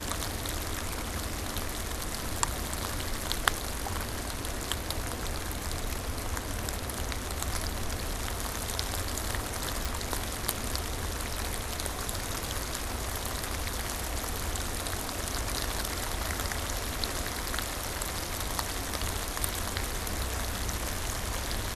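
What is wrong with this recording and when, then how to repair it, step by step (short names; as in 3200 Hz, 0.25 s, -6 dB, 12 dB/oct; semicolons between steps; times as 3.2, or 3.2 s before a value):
9.85 pop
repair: de-click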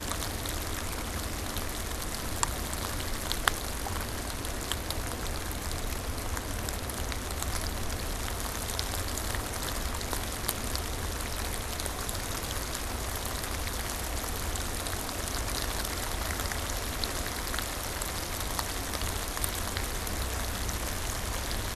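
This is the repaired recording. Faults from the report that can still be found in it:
none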